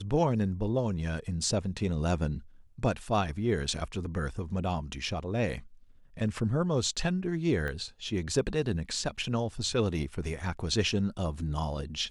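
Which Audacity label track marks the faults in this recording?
7.680000	7.680000	pop -23 dBFS

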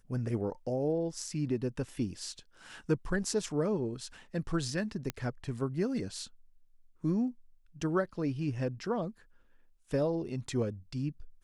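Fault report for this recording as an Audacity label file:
5.100000	5.100000	pop -18 dBFS

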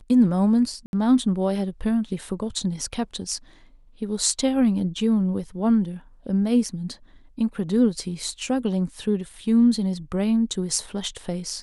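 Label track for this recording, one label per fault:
0.860000	0.930000	gap 71 ms

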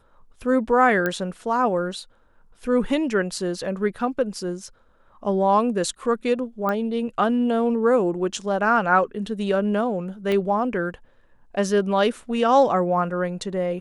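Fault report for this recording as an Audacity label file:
1.060000	1.060000	pop -11 dBFS
6.690000	6.690000	pop -14 dBFS
10.320000	10.320000	pop -14 dBFS

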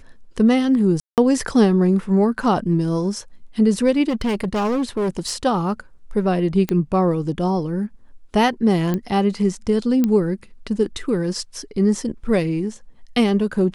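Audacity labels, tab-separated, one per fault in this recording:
1.000000	1.180000	gap 0.178 s
4.090000	5.340000	clipped -17.5 dBFS
6.690000	6.690000	pop -9 dBFS
8.940000	8.940000	pop -11 dBFS
10.040000	10.040000	pop -8 dBFS

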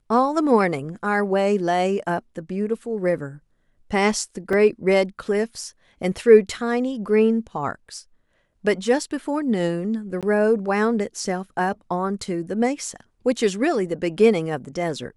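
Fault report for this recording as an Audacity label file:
4.530000	4.530000	gap 2.3 ms
10.210000	10.230000	gap 17 ms

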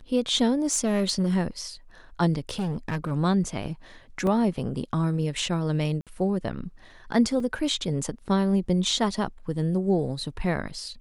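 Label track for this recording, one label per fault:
0.650000	1.350000	clipped -18 dBFS
2.490000	3.120000	clipped -24 dBFS
4.270000	4.270000	gap 2 ms
6.010000	6.070000	gap 57 ms
7.400000	7.400000	gap 2.7 ms

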